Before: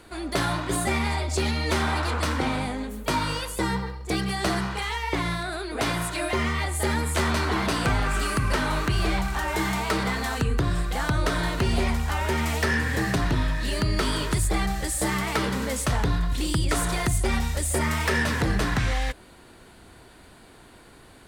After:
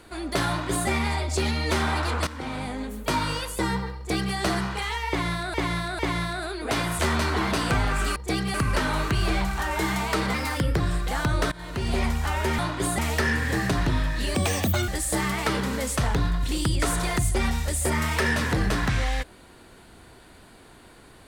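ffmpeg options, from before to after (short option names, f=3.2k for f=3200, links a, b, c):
-filter_complex "[0:a]asplit=14[a][b][c][d][e][f][g][h][i][j][k][l][m][n];[a]atrim=end=2.27,asetpts=PTS-STARTPTS,afade=t=out:st=2.266:d=0.004:c=hsin:silence=0.188365[o];[b]atrim=start=2.27:end=5.542,asetpts=PTS-STARTPTS,afade=t=in:d=0.6:silence=0.188365[p];[c]atrim=start=5.088:end=5.542[q];[d]atrim=start=5.088:end=6.092[r];[e]atrim=start=7.138:end=8.312[s];[f]atrim=start=3.968:end=4.352[t];[g]atrim=start=8.308:end=10.114[u];[h]atrim=start=10.11:end=10.64,asetpts=PTS-STARTPTS,asetrate=51156,aresample=44100,atrim=end_sample=20149,asetpts=PTS-STARTPTS[v];[i]atrim=start=10.636:end=11.36,asetpts=PTS-STARTPTS,afade=t=out:st=0.72:d=0.004:c=hsin:silence=0.0707946[w];[j]atrim=start=11.36:end=12.432,asetpts=PTS-STARTPTS,afade=t=in:d=0.52:silence=0.0707946[x];[k]atrim=start=0.478:end=0.882[y];[l]atrim=start=12.428:end=13.794[z];[m]atrim=start=13.79:end=14.77,asetpts=PTS-STARTPTS,asetrate=81144,aresample=44100,atrim=end_sample=23488,asetpts=PTS-STARTPTS[aa];[n]atrim=start=14.766[ab];[o][p]concat=n=2:v=0:a=1[ac];[ac][q]acrossfade=d=0.004:c1=hsin:c2=hsin[ad];[ad][r]acrossfade=d=0.004:c1=hsin:c2=hsin[ae];[ae][s]acrossfade=d=0.004:c1=hsin:c2=hsin[af];[af][t]acrossfade=d=0.004:c1=hsin:c2=hsin[ag];[ag][u]acrossfade=d=0.004:c1=hsin:c2=hsin[ah];[ah][v]acrossfade=d=0.004:c1=hsin:c2=hsin[ai];[w][x]concat=n=2:v=0:a=1[aj];[ai][aj]acrossfade=d=0.004:c1=hsin:c2=hsin[ak];[ak][y]acrossfade=d=0.004:c1=hsin:c2=hsin[al];[al][z]acrossfade=d=0.004:c1=hsin:c2=hsin[am];[am][aa]acrossfade=d=0.004:c1=hsin:c2=hsin[an];[an][ab]acrossfade=d=0.004:c1=hsin:c2=hsin"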